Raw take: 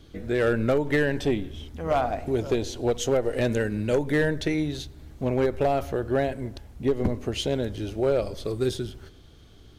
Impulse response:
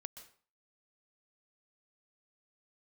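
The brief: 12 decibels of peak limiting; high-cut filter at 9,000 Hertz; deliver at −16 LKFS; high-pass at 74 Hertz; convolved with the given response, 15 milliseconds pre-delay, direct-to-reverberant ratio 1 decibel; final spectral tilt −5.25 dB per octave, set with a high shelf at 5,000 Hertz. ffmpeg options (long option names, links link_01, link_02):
-filter_complex "[0:a]highpass=74,lowpass=9000,highshelf=frequency=5000:gain=-3.5,alimiter=level_in=1dB:limit=-24dB:level=0:latency=1,volume=-1dB,asplit=2[link_01][link_02];[1:a]atrim=start_sample=2205,adelay=15[link_03];[link_02][link_03]afir=irnorm=-1:irlink=0,volume=3.5dB[link_04];[link_01][link_04]amix=inputs=2:normalize=0,volume=16dB"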